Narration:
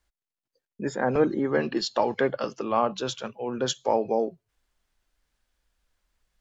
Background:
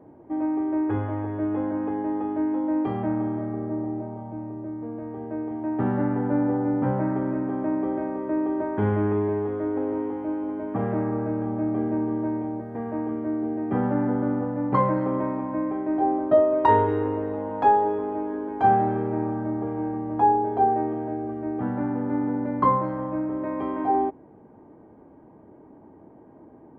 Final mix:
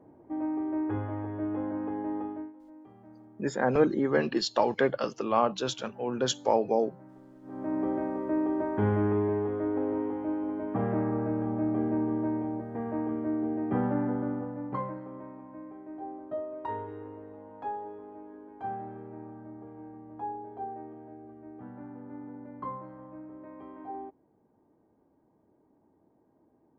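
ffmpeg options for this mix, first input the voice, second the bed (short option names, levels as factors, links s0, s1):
-filter_complex "[0:a]adelay=2600,volume=0.891[s0];[1:a]volume=7.5,afade=t=out:st=2.2:d=0.33:silence=0.0944061,afade=t=in:st=7.42:d=0.42:silence=0.0668344,afade=t=out:st=13.63:d=1.41:silence=0.188365[s1];[s0][s1]amix=inputs=2:normalize=0"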